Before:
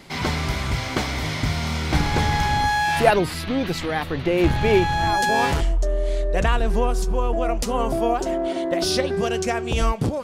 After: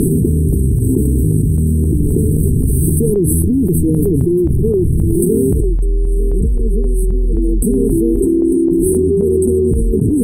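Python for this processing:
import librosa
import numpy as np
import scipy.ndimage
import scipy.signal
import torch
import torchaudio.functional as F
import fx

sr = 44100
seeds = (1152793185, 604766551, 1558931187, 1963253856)

y = fx.brickwall_bandstop(x, sr, low_hz=460.0, high_hz=8000.0)
y = fx.low_shelf(y, sr, hz=170.0, db=-9.0, at=(2.08, 2.51))
y = fx.chopper(y, sr, hz=1.9, depth_pct=65, duty_pct=50)
y = y + 10.0 ** (-18.5 / 20.0) * np.pad(y, (int(898 * sr / 1000.0), 0))[:len(y)]
y = fx.env_flatten(y, sr, amount_pct=100)
y = y * librosa.db_to_amplitude(1.5)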